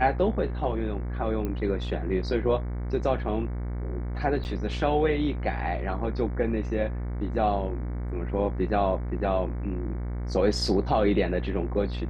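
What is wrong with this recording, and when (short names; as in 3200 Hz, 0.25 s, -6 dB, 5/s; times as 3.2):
buzz 60 Hz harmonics 38 -31 dBFS
1.45 pop -19 dBFS
4.44–4.45 gap 9.4 ms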